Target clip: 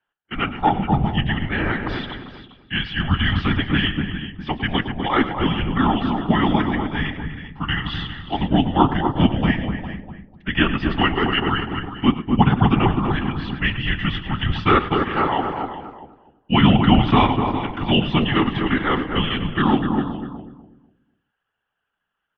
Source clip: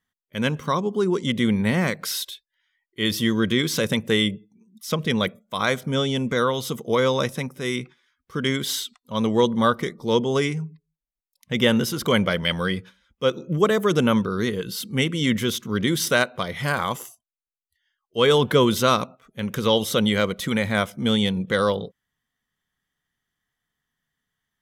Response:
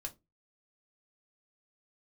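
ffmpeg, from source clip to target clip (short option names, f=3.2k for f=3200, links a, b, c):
-filter_complex "[0:a]aecho=1:1:115|447:0.211|0.224,asplit=2[a][b];[1:a]atrim=start_sample=2205[c];[b][c]afir=irnorm=-1:irlink=0,volume=4dB[d];[a][d]amix=inputs=2:normalize=0,afftfilt=real='hypot(re,im)*cos(2*PI*random(0))':imag='hypot(re,im)*sin(2*PI*random(1))':win_size=512:overlap=0.75,atempo=1.1,highpass=f=310:t=q:w=0.5412,highpass=f=310:t=q:w=1.307,lowpass=f=3.4k:t=q:w=0.5176,lowpass=f=3.4k:t=q:w=0.7071,lowpass=f=3.4k:t=q:w=1.932,afreqshift=-260,asplit=2[e][f];[f]adelay=247,lowpass=f=850:p=1,volume=-3dB,asplit=2[g][h];[h]adelay=247,lowpass=f=850:p=1,volume=0.3,asplit=2[i][j];[j]adelay=247,lowpass=f=850:p=1,volume=0.3,asplit=2[k][l];[l]adelay=247,lowpass=f=850:p=1,volume=0.3[m];[g][i][k][m]amix=inputs=4:normalize=0[n];[e][n]amix=inputs=2:normalize=0,volume=3.5dB"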